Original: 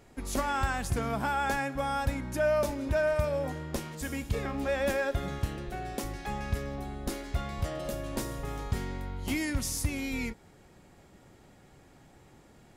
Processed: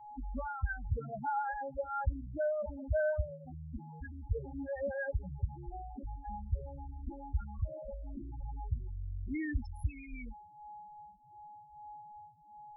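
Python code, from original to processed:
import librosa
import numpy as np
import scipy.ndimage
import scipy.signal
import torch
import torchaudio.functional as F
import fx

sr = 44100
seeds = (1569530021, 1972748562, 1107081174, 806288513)

y = x + 10.0 ** (-45.0 / 20.0) * np.sin(2.0 * np.pi * 840.0 * np.arange(len(x)) / sr)
y = fx.spec_topn(y, sr, count=4)
y = fx.comb_cascade(y, sr, direction='falling', hz=0.85)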